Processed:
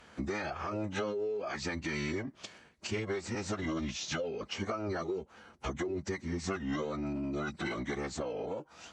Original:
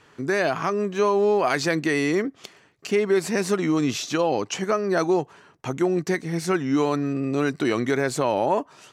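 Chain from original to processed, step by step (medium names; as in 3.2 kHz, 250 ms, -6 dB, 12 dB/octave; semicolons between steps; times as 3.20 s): compression 16:1, threshold -31 dBFS, peak gain reduction 16 dB; formant-preserving pitch shift -11.5 st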